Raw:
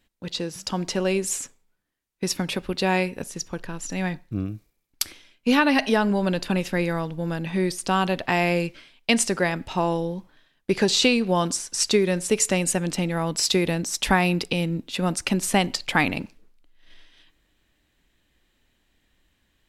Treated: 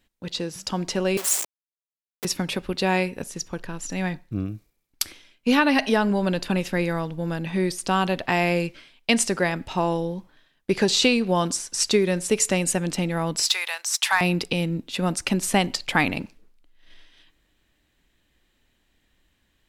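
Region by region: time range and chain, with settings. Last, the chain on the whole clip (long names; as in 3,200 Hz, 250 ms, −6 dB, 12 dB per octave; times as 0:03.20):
0:01.17–0:02.25: hold until the input has moved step −26 dBFS + high-pass filter 530 Hz + high-shelf EQ 5,100 Hz +8 dB
0:13.48–0:14.21: inverse Chebyshev high-pass filter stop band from 200 Hz, stop band 70 dB + leveller curve on the samples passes 1
whole clip: no processing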